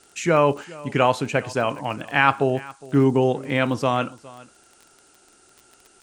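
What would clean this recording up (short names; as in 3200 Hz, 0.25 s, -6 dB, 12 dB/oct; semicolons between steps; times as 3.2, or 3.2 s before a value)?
de-click; noise print and reduce 10 dB; inverse comb 0.411 s -21 dB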